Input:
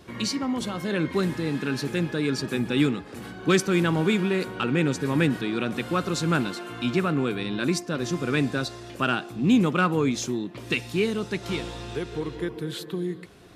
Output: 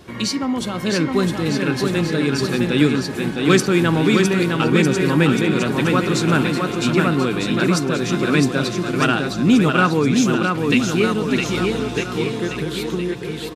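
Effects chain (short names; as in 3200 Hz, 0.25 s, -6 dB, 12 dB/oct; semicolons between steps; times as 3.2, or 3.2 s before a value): bouncing-ball echo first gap 0.66 s, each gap 0.9×, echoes 5; gain +5.5 dB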